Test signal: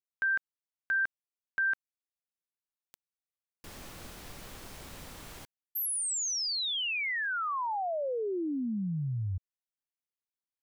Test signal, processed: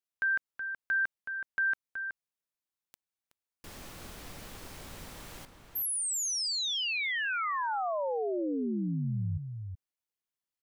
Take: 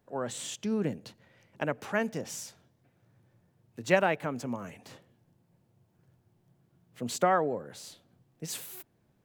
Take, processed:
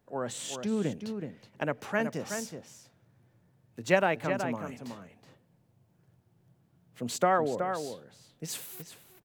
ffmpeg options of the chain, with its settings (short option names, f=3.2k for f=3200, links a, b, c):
-filter_complex "[0:a]asplit=2[a][b];[b]adelay=373.2,volume=-7dB,highshelf=f=4k:g=-8.4[c];[a][c]amix=inputs=2:normalize=0"